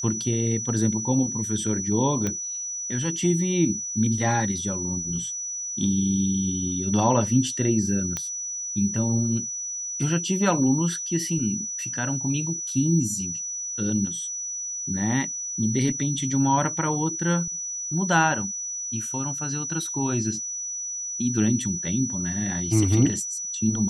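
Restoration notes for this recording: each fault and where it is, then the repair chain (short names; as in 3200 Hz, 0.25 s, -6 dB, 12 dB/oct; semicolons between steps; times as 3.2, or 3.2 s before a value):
tone 5900 Hz -29 dBFS
2.27 pop -13 dBFS
8.17 pop -13 dBFS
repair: de-click; notch 5900 Hz, Q 30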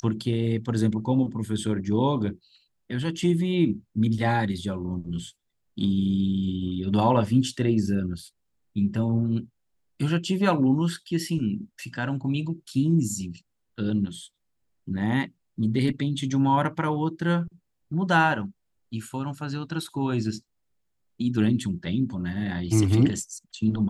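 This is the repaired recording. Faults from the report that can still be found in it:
none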